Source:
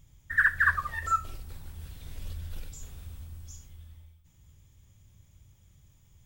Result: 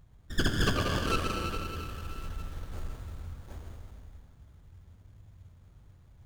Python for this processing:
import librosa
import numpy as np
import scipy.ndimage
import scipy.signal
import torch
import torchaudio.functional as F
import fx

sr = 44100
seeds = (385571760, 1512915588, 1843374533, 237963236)

y = fx.peak_eq(x, sr, hz=6800.0, db=4.5, octaves=0.77)
y = fx.rev_plate(y, sr, seeds[0], rt60_s=3.4, hf_ratio=0.6, predelay_ms=75, drr_db=0.0)
y = fx.running_max(y, sr, window=17)